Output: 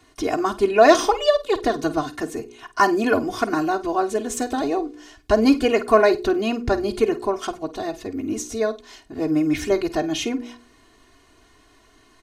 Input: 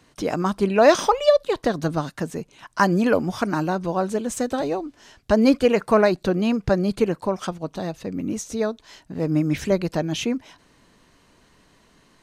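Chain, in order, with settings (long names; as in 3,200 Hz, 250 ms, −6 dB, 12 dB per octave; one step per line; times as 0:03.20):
comb filter 2.8 ms, depth 100%
hum removal 59.97 Hz, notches 8
on a send: flutter between parallel walls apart 8.6 metres, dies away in 0.21 s
on the sum: level −1 dB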